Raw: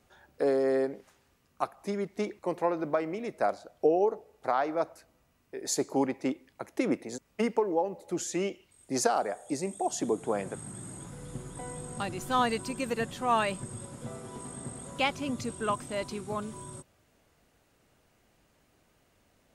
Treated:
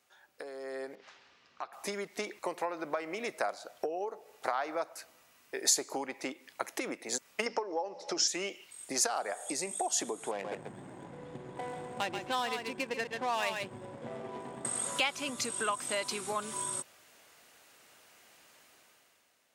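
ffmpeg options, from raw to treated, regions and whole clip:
-filter_complex "[0:a]asettb=1/sr,asplit=3[a][b][c];[a]atrim=end=0.954[d];[b]atrim=start=0.95:end=1.73,asetpts=PTS-STARTPTS,afade=t=in:d=0.004:c=qsin,afade=t=out:st=0.776:d=0.004:c=qsin,lowpass=f=5k:w=0.5412,lowpass=f=5k:w=1.3066,acompressor=threshold=-50dB:ratio=2.5:attack=3.2:release=140:knee=1:detection=peak[e];[c]atrim=start=1.726[f];[d][e]acrossfade=d=0.004:c1=hsin:c2=qsin[g];[g][f]acrossfade=d=0.004:c1=qsin:c2=hsin,asettb=1/sr,asplit=3[h][i][j];[h]atrim=end=7.464[k];[i]atrim=start=7.46:end=8.28,asetpts=PTS-STARTPTS,afade=t=in:d=0.004:c=qsin,afade=t=out:st=0.816:d=0.004:c=qsin,lowpass=f=5.4k:t=q:w=11,equalizer=f=650:w=0.37:g=10.5,bandreject=f=60:t=h:w=6,bandreject=f=120:t=h:w=6,bandreject=f=180:t=h:w=6,bandreject=f=240:t=h:w=6,bandreject=f=300:t=h:w=6[l];[j]atrim=start=8.276[m];[k][l]acrossfade=d=0.004:c1=hsin:c2=qsin[n];[n][m]acrossfade=d=0.004:c1=qsin:c2=hsin,asettb=1/sr,asplit=3[o][p][q];[o]atrim=end=10.314[r];[p]atrim=start=10.31:end=14.65,asetpts=PTS-STARTPTS,afade=t=in:d=0.004:c=qsin,afade=t=out:st=4.336:d=0.004:c=qsin,equalizer=f=1.3k:w=4.1:g=-12,adynamicsmooth=sensitivity=7:basefreq=880,aecho=1:1:135:0.376,atrim=end_sample=191394[s];[q]atrim=start=14.646[t];[r][s]acrossfade=d=0.004:c1=hsin:c2=qsin[u];[u][t]acrossfade=d=0.004:c1=qsin:c2=hsin,acompressor=threshold=-35dB:ratio=12,highpass=f=1.4k:p=1,dynaudnorm=f=170:g=9:m=12.5dB"

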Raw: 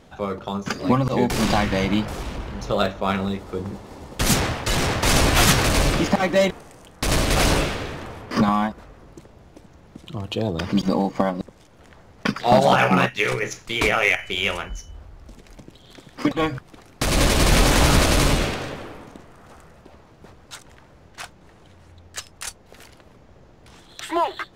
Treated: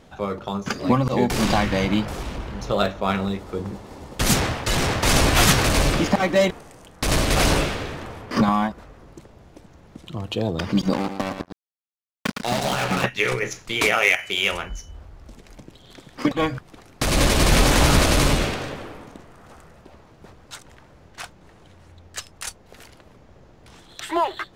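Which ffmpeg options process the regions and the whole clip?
-filter_complex "[0:a]asettb=1/sr,asplit=3[a][b][c];[a]atrim=end=10.934[d];[b]atrim=start=10.93:end=13.04,asetpts=PTS-STARTPTS,afade=t=in:d=0.004:c=qsin,afade=t=out:st=2.106:d=0.004:c=qsin,acrossover=split=260|1600[e][f][g];[e]acompressor=threshold=-27dB:ratio=4[h];[f]acompressor=threshold=-27dB:ratio=4[i];[g]acompressor=threshold=-29dB:ratio=4[j];[h][i][j]amix=inputs=3:normalize=0,acrusher=bits=3:mix=0:aa=0.5,aecho=1:1:112:0.398,atrim=end_sample=93051[k];[c]atrim=start=13.036[l];[d][k]acrossfade=d=0.004:c1=hsin:c2=qsin[m];[m][l]acrossfade=d=0.004:c1=qsin:c2=hsin,asettb=1/sr,asplit=3[n][o][p];[n]atrim=end=13.804[q];[o]atrim=start=13.8:end=14.52,asetpts=PTS-STARTPTS,afade=t=in:d=0.004:c=qsin,afade=t=out:st=0.716:d=0.004:c=qsin,highpass=f=210:p=1,highshelf=f=4.4k:g=6[r];[p]atrim=start=14.516[s];[q][r]acrossfade=d=0.004:c1=hsin:c2=qsin[t];[t][s]acrossfade=d=0.004:c1=qsin:c2=hsin"

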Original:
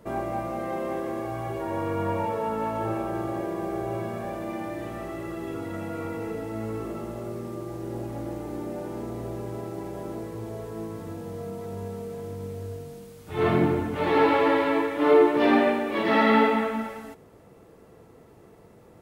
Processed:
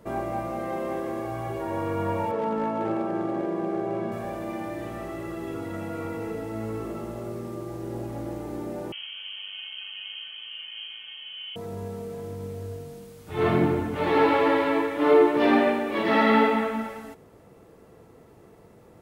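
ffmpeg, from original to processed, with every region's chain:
-filter_complex "[0:a]asettb=1/sr,asplit=3[a][b][c];[a]atrim=end=2.314[d];[b]atrim=start=2.31:end=4.12,asetpts=PTS-STARTPTS,afade=t=in:d=0.004:c=qsin,afade=t=out:st=1.806:d=0.004:c=qsin,highpass=f=180:w=0.5412,highpass=f=180:w=1.3066,aemphasis=mode=reproduction:type=bsi,asoftclip=type=hard:threshold=-20.5dB[e];[c]atrim=start=4.116[f];[d][e]acrossfade=d=0.004:c1=hsin:c2=qsin[g];[g][f]acrossfade=d=0.004:c1=qsin:c2=hsin,asettb=1/sr,asplit=3[h][i][j];[h]atrim=end=8.924[k];[i]atrim=start=8.92:end=11.56,asetpts=PTS-STARTPTS,afade=t=in:d=0.004:c=qsin,afade=t=out:st=2.636:d=0.004:c=qsin,highpass=400,lowpass=f=3k:t=q:w=0.5098,lowpass=f=3k:t=q:w=0.6013,lowpass=f=3k:t=q:w=0.9,lowpass=f=3k:t=q:w=2.563,afreqshift=-3500,bandreject=f=770:w=22[l];[j]atrim=start=11.556[m];[k][l]acrossfade=d=0.004:c1=hsin:c2=qsin[n];[n][m]acrossfade=d=0.004:c1=qsin:c2=hsin"

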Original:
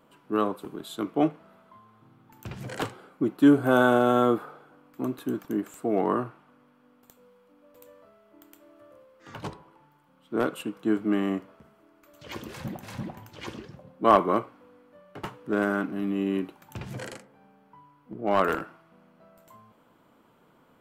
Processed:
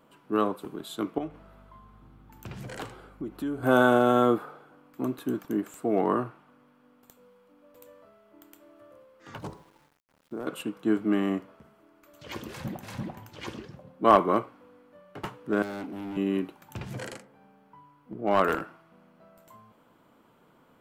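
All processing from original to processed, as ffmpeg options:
-filter_complex "[0:a]asettb=1/sr,asplit=3[a][b][c];[a]atrim=end=1.184[d];[b]atrim=start=1.18:end=3.63,asetpts=PTS-STARTPTS,afade=t=in:d=0.004:c=qsin,afade=t=out:st=2.446:d=0.004:c=qsin,acompressor=threshold=-36dB:ratio=2.5:attack=3.2:release=140:knee=1:detection=peak,aeval=exprs='val(0)+0.002*(sin(2*PI*50*n/s)+sin(2*PI*2*50*n/s)/2+sin(2*PI*3*50*n/s)/3+sin(2*PI*4*50*n/s)/4+sin(2*PI*5*50*n/s)/5)':c=same[e];[c]atrim=start=3.626[f];[d][e]acrossfade=d=0.004:c1=hsin:c2=qsin[g];[g][f]acrossfade=d=0.004:c1=qsin:c2=hsin,asettb=1/sr,asplit=3[h][i][j];[h]atrim=end=9.384[k];[i]atrim=start=9.38:end=10.47,asetpts=PTS-STARTPTS,afade=t=in:d=0.004:c=qsin,afade=t=out:st=1.086:d=0.004:c=qsin,equalizer=f=2.7k:w=0.61:g=-8.5,acompressor=threshold=-31dB:ratio=6:attack=3.2:release=140:knee=1:detection=peak,aeval=exprs='val(0)*gte(abs(val(0)),0.00133)':c=same[l];[j]atrim=start=10.466[m];[k][l]acrossfade=d=0.004:c1=hsin:c2=qsin[n];[n][m]acrossfade=d=0.004:c1=qsin:c2=hsin,asettb=1/sr,asplit=3[o][p][q];[o]atrim=end=15.624[r];[p]atrim=start=15.62:end=16.17,asetpts=PTS-STARTPTS,afade=t=in:d=0.004:c=qsin,afade=t=out:st=0.546:d=0.004:c=qsin,highpass=210,equalizer=f=1.4k:w=1.5:g=-9.5,asoftclip=type=hard:threshold=-34dB[s];[q]atrim=start=16.166[t];[r][s]acrossfade=d=0.004:c1=hsin:c2=qsin[u];[u][t]acrossfade=d=0.004:c1=qsin:c2=hsin"

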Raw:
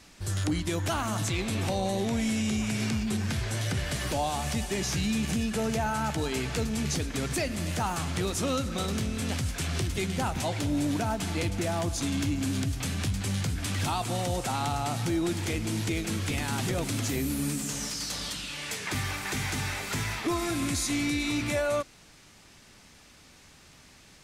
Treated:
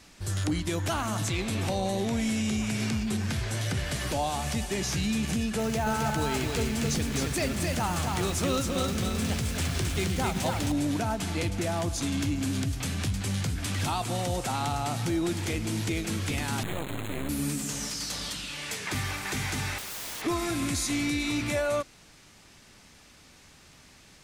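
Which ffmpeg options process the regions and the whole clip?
-filter_complex "[0:a]asettb=1/sr,asplit=3[a][b][c];[a]atrim=end=5.604[d];[b]atrim=start=5.6:end=10.72,asetpts=PTS-STARTPTS,afade=t=in:d=0.004:c=qsin,afade=t=out:st=5.116:d=0.004:c=qsin,acrusher=bits=6:mix=0:aa=0.5,aecho=1:1:266:0.668,atrim=end_sample=225792[e];[c]atrim=start=10.716[f];[d][e]acrossfade=d=0.004:c1=hsin:c2=qsin[g];[g][f]acrossfade=d=0.004:c1=qsin:c2=hsin,asettb=1/sr,asplit=3[h][i][j];[h]atrim=end=16.634[k];[i]atrim=start=16.63:end=17.29,asetpts=PTS-STARTPTS,afade=t=in:d=0.004:c=qsin,afade=t=out:st=0.656:d=0.004:c=qsin,adynamicsmooth=sensitivity=4.5:basefreq=1.4k,acrusher=bits=3:dc=4:mix=0:aa=0.000001,asuperstop=centerf=5300:order=12:qfactor=2.3[l];[j]atrim=start=17.286[m];[k][l]acrossfade=d=0.004:c1=hsin:c2=qsin[n];[n][m]acrossfade=d=0.004:c1=qsin:c2=hsin,asettb=1/sr,asplit=3[o][p][q];[o]atrim=end=19.784[r];[p]atrim=start=19.78:end=20.22,asetpts=PTS-STARTPTS,afade=t=in:d=0.004:c=qsin,afade=t=out:st=0.436:d=0.004:c=qsin,lowshelf=f=210:g=-7.5,aeval=exprs='(mod(42.2*val(0)+1,2)-1)/42.2':c=same[s];[q]atrim=start=20.216[t];[r][s]acrossfade=d=0.004:c1=hsin:c2=qsin[u];[u][t]acrossfade=d=0.004:c1=qsin:c2=hsin"

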